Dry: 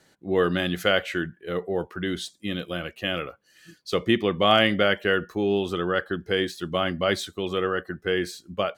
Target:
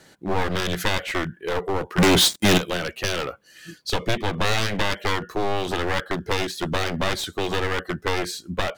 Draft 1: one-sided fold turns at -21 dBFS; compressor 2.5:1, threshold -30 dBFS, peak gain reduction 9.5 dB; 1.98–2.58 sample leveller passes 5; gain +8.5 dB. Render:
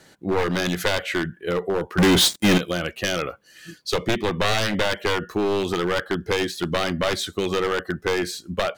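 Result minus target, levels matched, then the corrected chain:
one-sided fold: distortion -12 dB
one-sided fold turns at -28.5 dBFS; compressor 2.5:1, threshold -30 dBFS, peak gain reduction 10.5 dB; 1.98–2.58 sample leveller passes 5; gain +8.5 dB

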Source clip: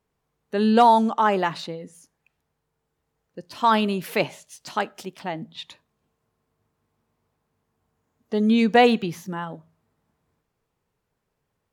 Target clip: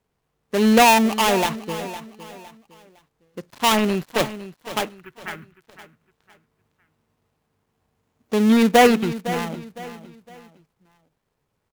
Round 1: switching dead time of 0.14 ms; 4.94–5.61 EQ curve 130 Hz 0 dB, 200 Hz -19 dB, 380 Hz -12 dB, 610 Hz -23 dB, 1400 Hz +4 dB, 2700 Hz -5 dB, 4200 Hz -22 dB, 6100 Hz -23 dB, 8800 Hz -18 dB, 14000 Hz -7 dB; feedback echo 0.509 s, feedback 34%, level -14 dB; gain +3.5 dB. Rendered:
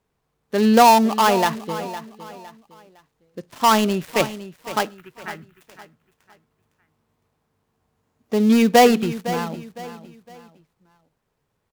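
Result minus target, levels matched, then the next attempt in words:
switching dead time: distortion -7 dB
switching dead time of 0.28 ms; 4.94–5.61 EQ curve 130 Hz 0 dB, 200 Hz -19 dB, 380 Hz -12 dB, 610 Hz -23 dB, 1400 Hz +4 dB, 2700 Hz -5 dB, 4200 Hz -22 dB, 6100 Hz -23 dB, 8800 Hz -18 dB, 14000 Hz -7 dB; feedback echo 0.509 s, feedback 34%, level -14 dB; gain +3.5 dB

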